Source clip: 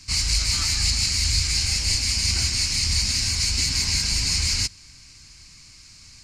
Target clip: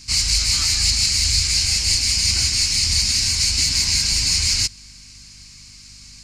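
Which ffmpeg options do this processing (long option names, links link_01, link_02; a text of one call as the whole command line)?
ffmpeg -i in.wav -filter_complex "[0:a]acrossover=split=730|2400[link_01][link_02][link_03];[link_03]acontrast=27[link_04];[link_01][link_02][link_04]amix=inputs=3:normalize=0,aeval=exprs='val(0)+0.00355*(sin(2*PI*50*n/s)+sin(2*PI*2*50*n/s)/2+sin(2*PI*3*50*n/s)/3+sin(2*PI*4*50*n/s)/4+sin(2*PI*5*50*n/s)/5)':channel_layout=same" out.wav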